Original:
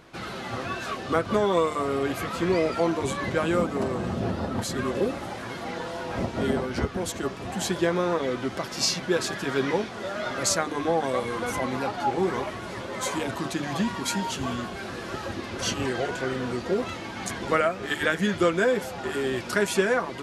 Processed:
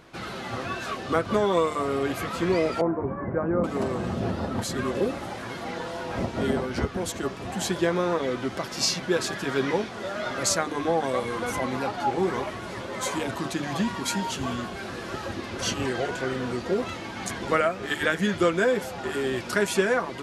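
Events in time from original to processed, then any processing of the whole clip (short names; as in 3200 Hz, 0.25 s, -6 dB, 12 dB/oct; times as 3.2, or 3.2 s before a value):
2.81–3.64 Bessel low-pass 1000 Hz, order 8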